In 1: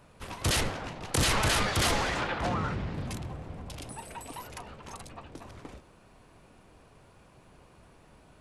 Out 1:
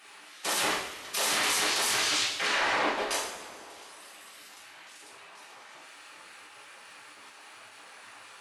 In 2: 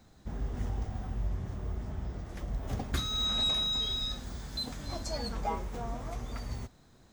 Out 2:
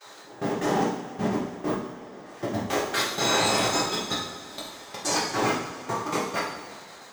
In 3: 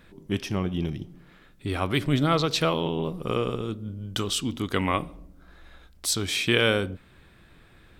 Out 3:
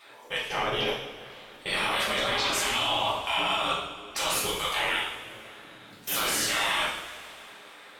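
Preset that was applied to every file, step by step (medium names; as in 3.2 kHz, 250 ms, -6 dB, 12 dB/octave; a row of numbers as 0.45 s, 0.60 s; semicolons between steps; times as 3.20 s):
bass shelf 330 Hz +6 dB; spectral gate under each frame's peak -20 dB weak; treble shelf 9.6 kHz -5.5 dB; level held to a coarse grid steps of 23 dB; high-pass 61 Hz 6 dB/octave; two-slope reverb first 0.69 s, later 3 s, from -16 dB, DRR -7.5 dB; normalise loudness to -27 LUFS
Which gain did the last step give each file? +11.0 dB, +15.5 dB, +11.5 dB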